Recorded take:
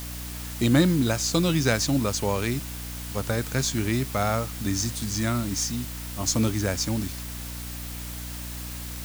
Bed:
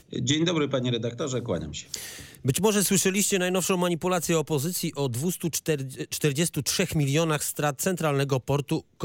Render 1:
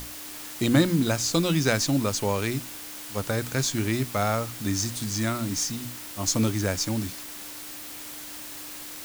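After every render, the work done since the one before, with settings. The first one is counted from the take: notches 60/120/180/240 Hz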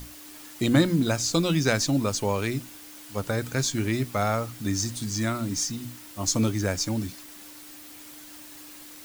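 denoiser 7 dB, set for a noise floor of -40 dBFS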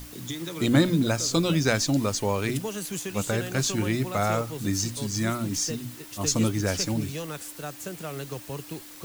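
add bed -11 dB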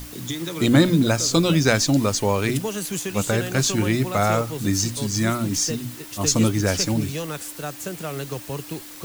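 gain +5 dB; limiter -3 dBFS, peak gain reduction 1 dB

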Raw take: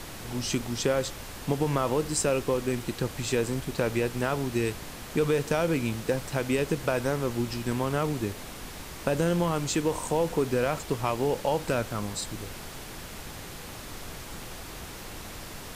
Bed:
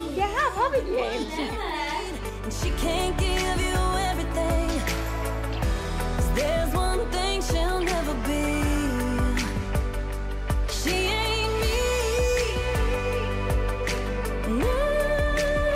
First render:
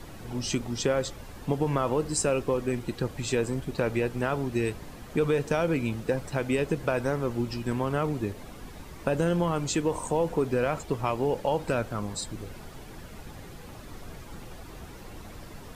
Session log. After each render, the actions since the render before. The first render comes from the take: denoiser 10 dB, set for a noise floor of -41 dBFS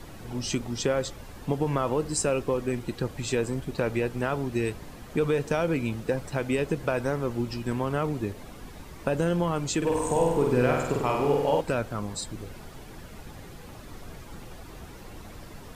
9.77–11.61 flutter echo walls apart 8.3 m, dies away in 1 s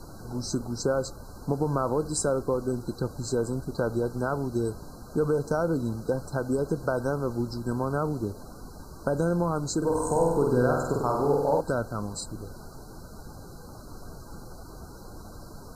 FFT band-reject 1600–3900 Hz; dynamic EQ 5600 Hz, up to -3 dB, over -52 dBFS, Q 2.2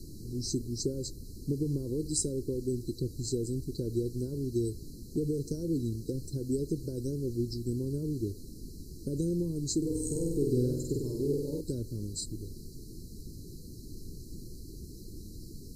elliptic band-stop 370–4100 Hz, stop band 40 dB; dynamic EQ 200 Hz, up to -6 dB, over -45 dBFS, Q 2.1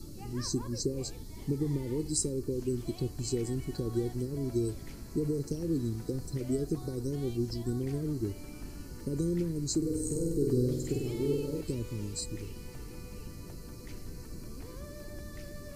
add bed -26 dB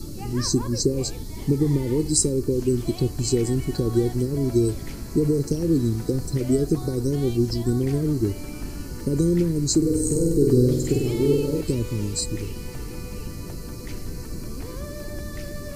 gain +10.5 dB

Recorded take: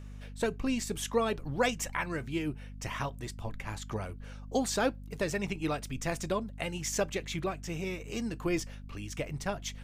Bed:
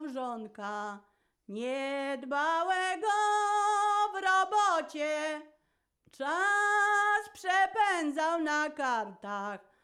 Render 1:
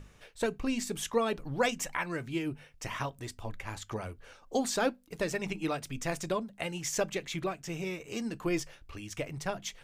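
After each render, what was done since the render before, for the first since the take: notches 50/100/150/200/250 Hz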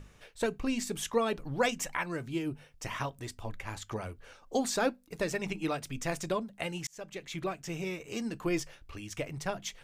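2.03–2.85 bell 2100 Hz -4.5 dB 1 oct; 4.72–5.27 notch 3100 Hz; 6.87–7.53 fade in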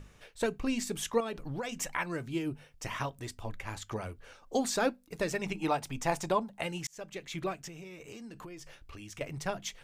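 1.2–1.77 compressor 12:1, threshold -32 dBFS; 5.59–6.61 bell 860 Hz +12.5 dB 0.52 oct; 7.67–9.21 compressor 16:1, threshold -42 dBFS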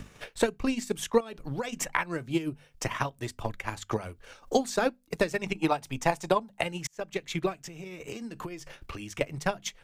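transient shaper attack +9 dB, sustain -5 dB; three-band squash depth 40%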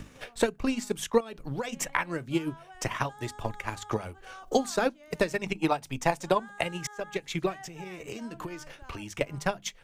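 add bed -21 dB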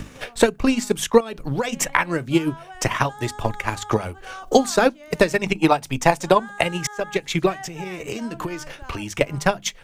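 gain +9.5 dB; limiter -1 dBFS, peak gain reduction 1 dB

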